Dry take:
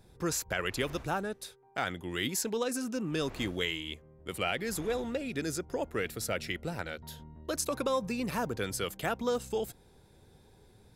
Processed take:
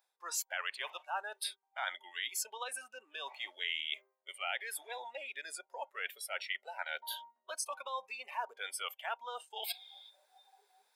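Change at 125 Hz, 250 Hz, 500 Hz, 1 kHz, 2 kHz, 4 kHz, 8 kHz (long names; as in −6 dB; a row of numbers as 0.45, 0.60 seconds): below −40 dB, below −35 dB, −15.0 dB, −3.5 dB, −2.5 dB, −1.5 dB, −4.0 dB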